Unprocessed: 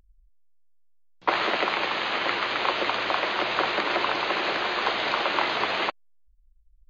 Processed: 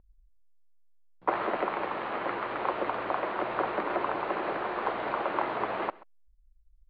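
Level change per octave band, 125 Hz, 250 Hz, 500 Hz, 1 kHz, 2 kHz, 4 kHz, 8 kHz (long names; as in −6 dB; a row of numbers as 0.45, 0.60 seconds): −2.0 dB, −2.0 dB, −2.0 dB, −4.0 dB, −10.5 dB, −20.0 dB, can't be measured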